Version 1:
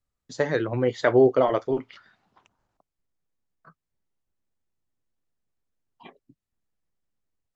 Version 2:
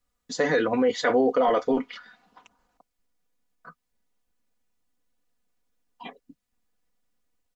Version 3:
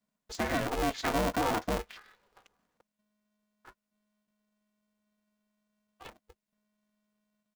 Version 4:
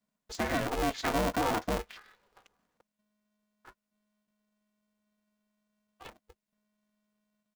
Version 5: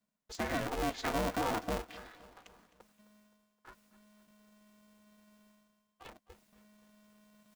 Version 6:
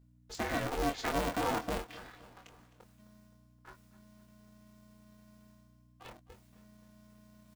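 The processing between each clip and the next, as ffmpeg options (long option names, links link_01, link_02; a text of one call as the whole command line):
ffmpeg -i in.wav -af "aecho=1:1:4.1:0.88,alimiter=limit=-17.5dB:level=0:latency=1:release=12,lowshelf=frequency=270:gain=-5,volume=5dB" out.wav
ffmpeg -i in.wav -af "aeval=exprs='val(0)*sgn(sin(2*PI*210*n/s))':channel_layout=same,volume=-8dB" out.wav
ffmpeg -i in.wav -af anull out.wav
ffmpeg -i in.wav -af "areverse,acompressor=mode=upward:threshold=-44dB:ratio=2.5,areverse,aecho=1:1:260|520|780|1040:0.126|0.0617|0.0302|0.0148,volume=-4dB" out.wav
ffmpeg -i in.wav -filter_complex "[0:a]aeval=exprs='val(0)+0.000891*(sin(2*PI*60*n/s)+sin(2*PI*2*60*n/s)/2+sin(2*PI*3*60*n/s)/3+sin(2*PI*4*60*n/s)/4+sin(2*PI*5*60*n/s)/5)':channel_layout=same,asplit=2[link_01][link_02];[link_02]adelay=24,volume=-6dB[link_03];[link_01][link_03]amix=inputs=2:normalize=0" out.wav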